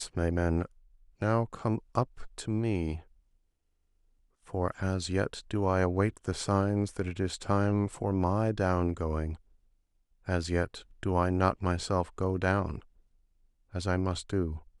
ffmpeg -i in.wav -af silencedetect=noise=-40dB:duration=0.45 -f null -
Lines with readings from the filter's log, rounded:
silence_start: 0.66
silence_end: 1.22 | silence_duration: 0.56
silence_start: 2.98
silence_end: 4.54 | silence_duration: 1.56
silence_start: 9.35
silence_end: 10.28 | silence_duration: 0.93
silence_start: 12.79
silence_end: 13.74 | silence_duration: 0.95